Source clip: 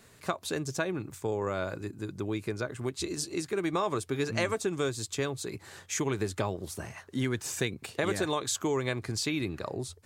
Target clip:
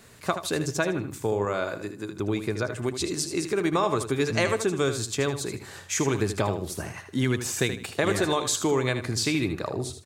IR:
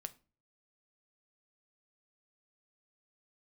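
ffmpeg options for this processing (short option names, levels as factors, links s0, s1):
-filter_complex "[0:a]asettb=1/sr,asplit=3[s0][s1][s2];[s0]atrim=end=1.454[s3];[s1]atrim=start=1.45:end=2.2,asetpts=PTS-STARTPTS,afade=t=in:d=0.004:c=qsin,afade=t=out:st=0.746:d=0.004:c=qsin,highpass=f=250:p=1[s4];[s2]atrim=start=2.196[s5];[s3][s4]acrossfade=d=0.004:c1=hsin:c2=qsin[s6];[s6][s5]acrossfade=d=0.004:c1=qsin:c2=hsin,asplit=2[s7][s8];[s8]aecho=0:1:78|156|234:0.335|0.0904|0.0244[s9];[s7][s9]amix=inputs=2:normalize=0,volume=1.78"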